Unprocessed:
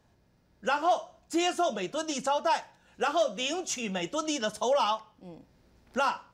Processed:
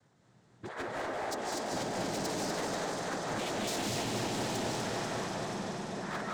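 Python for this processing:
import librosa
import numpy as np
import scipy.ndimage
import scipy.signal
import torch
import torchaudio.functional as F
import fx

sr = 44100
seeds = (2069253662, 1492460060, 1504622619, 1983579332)

y = fx.law_mismatch(x, sr, coded='A')
y = fx.peak_eq(y, sr, hz=3600.0, db=-14.5, octaves=0.48)
y = fx.over_compress(y, sr, threshold_db=-40.0, ratio=-1.0)
y = fx.transient(y, sr, attack_db=2, sustain_db=6)
y = fx.noise_vocoder(y, sr, seeds[0], bands=6)
y = fx.echo_swell(y, sr, ms=97, loudest=5, wet_db=-16.0)
y = fx.rev_freeverb(y, sr, rt60_s=1.4, hf_ratio=0.85, predelay_ms=115, drr_db=-1.0)
y = np.clip(y, -10.0 ** (-33.5 / 20.0), 10.0 ** (-33.5 / 20.0))
y = fx.echo_warbled(y, sr, ms=244, feedback_pct=71, rate_hz=2.8, cents=75, wet_db=-5)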